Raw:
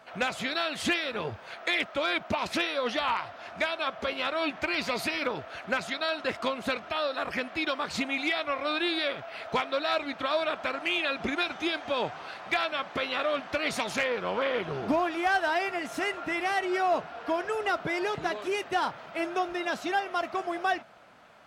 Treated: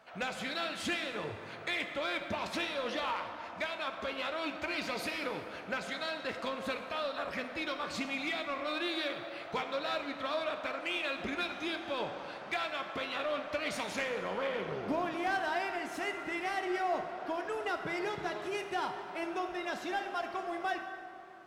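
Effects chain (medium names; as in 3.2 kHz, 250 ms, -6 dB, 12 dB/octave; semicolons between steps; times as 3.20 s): in parallel at -8.5 dB: hard clipper -29.5 dBFS, distortion -8 dB; on the sum: plate-style reverb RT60 2.7 s, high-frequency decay 0.55×, DRR 5.5 dB; trim -9 dB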